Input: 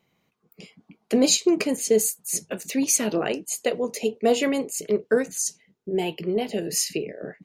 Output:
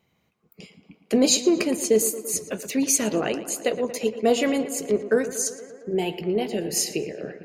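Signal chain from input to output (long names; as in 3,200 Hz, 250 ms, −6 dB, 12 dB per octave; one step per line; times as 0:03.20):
parametric band 72 Hz +11 dB 0.77 octaves
tape delay 115 ms, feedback 79%, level −12.5 dB, low-pass 3,200 Hz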